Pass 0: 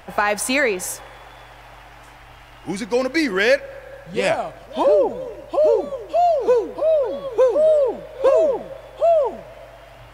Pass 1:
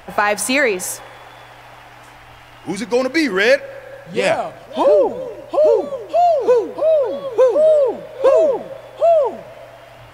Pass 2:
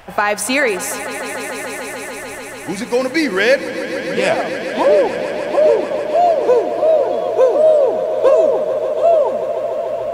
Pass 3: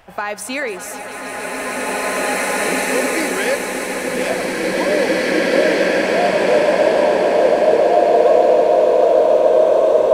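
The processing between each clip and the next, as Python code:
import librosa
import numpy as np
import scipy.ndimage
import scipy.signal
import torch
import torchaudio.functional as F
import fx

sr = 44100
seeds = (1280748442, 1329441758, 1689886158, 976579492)

y1 = fx.hum_notches(x, sr, base_hz=50, count=4)
y1 = y1 * librosa.db_to_amplitude(3.0)
y2 = fx.echo_swell(y1, sr, ms=146, loudest=5, wet_db=-14.0)
y3 = fx.rev_bloom(y2, sr, seeds[0], attack_ms=2370, drr_db=-8.5)
y3 = y3 * librosa.db_to_amplitude(-7.5)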